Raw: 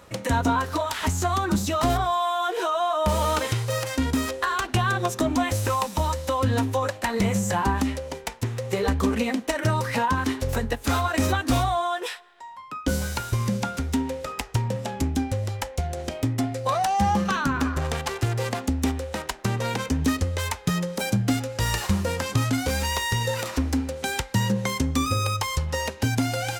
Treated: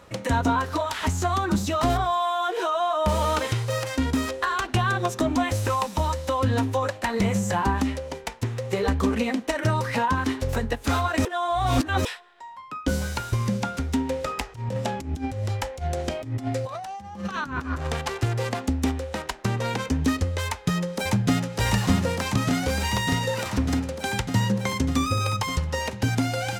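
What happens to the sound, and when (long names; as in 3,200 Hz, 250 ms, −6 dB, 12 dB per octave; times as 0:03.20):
0:11.25–0:12.05: reverse
0:14.09–0:17.87: compressor whose output falls as the input rises −28 dBFS, ratio −0.5
0:20.45–0:21.54: delay throw 600 ms, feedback 80%, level −2.5 dB
whole clip: high-shelf EQ 8,400 Hz −7 dB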